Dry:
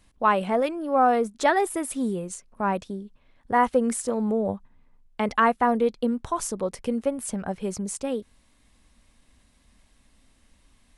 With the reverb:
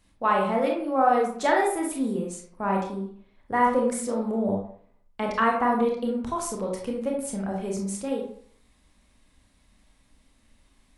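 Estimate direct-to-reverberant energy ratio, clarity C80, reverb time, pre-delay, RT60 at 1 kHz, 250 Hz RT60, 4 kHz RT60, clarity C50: −0.5 dB, 8.0 dB, 0.55 s, 24 ms, 0.55 s, 0.55 s, 0.35 s, 4.0 dB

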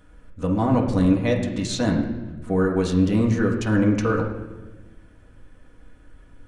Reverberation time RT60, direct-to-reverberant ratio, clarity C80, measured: 1.2 s, −1.5 dB, 8.5 dB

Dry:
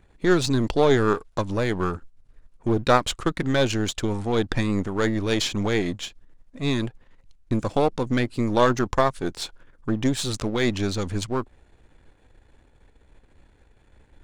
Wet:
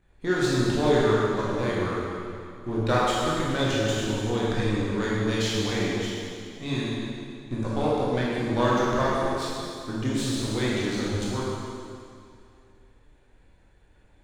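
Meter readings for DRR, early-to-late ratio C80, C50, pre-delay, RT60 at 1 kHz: −7.0 dB, −1.5 dB, −3.0 dB, 7 ms, 2.4 s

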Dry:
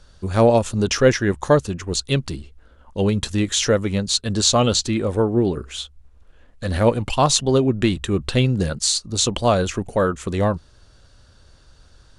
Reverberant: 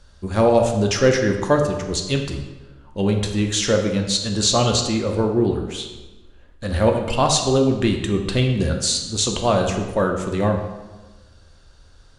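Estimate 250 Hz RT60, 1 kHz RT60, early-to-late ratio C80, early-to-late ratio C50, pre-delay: 1.3 s, 1.2 s, 8.0 dB, 6.0 dB, 3 ms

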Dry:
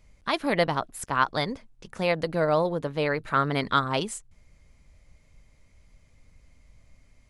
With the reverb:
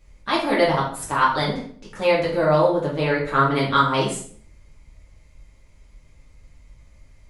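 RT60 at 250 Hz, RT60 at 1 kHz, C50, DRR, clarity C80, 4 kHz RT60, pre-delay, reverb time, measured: 0.65 s, 0.50 s, 5.0 dB, −6.0 dB, 9.5 dB, 0.45 s, 3 ms, 0.55 s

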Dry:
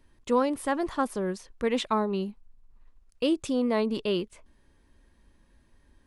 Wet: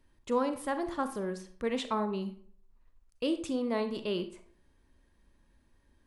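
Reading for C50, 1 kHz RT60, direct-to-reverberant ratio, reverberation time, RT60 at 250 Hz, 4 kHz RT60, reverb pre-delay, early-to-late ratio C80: 11.0 dB, 0.50 s, 8.5 dB, 0.55 s, 0.60 s, 0.35 s, 33 ms, 15.5 dB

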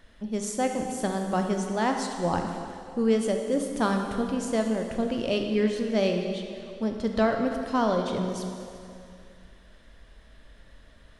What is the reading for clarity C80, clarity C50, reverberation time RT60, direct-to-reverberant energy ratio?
5.5 dB, 4.5 dB, 2.5 s, 3.5 dB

